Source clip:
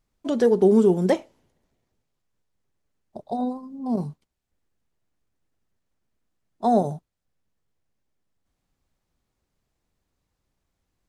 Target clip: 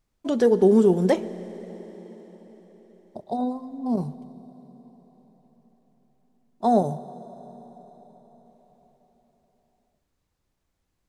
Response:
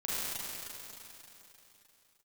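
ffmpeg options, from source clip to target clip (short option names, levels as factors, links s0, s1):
-filter_complex "[0:a]asplit=2[s0][s1];[1:a]atrim=start_sample=2205,asetrate=30429,aresample=44100,adelay=67[s2];[s1][s2]afir=irnorm=-1:irlink=0,volume=0.0562[s3];[s0][s3]amix=inputs=2:normalize=0"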